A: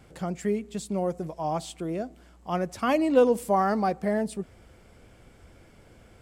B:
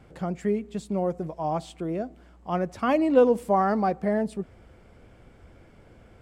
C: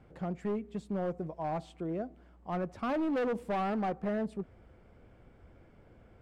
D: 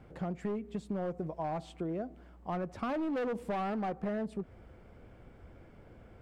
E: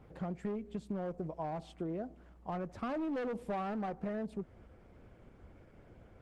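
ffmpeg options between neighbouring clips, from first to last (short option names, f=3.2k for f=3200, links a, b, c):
-af "highshelf=f=3.9k:g=-11.5,volume=1.5dB"
-af "volume=23dB,asoftclip=hard,volume=-23dB,highshelf=f=3.7k:g=-11,volume=-5.5dB"
-af "acompressor=threshold=-36dB:ratio=6,volume=3.5dB"
-af "volume=-2dB" -ar 48000 -c:a libopus -b:a 16k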